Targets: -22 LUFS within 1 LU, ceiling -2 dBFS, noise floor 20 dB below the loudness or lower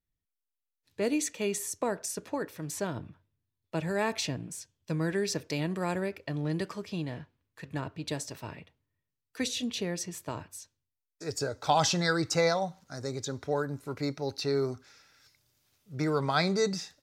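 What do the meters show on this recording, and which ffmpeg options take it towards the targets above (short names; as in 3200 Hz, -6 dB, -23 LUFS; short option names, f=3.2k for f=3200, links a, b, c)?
loudness -32.0 LUFS; peak -13.0 dBFS; loudness target -22.0 LUFS
-> -af "volume=10dB"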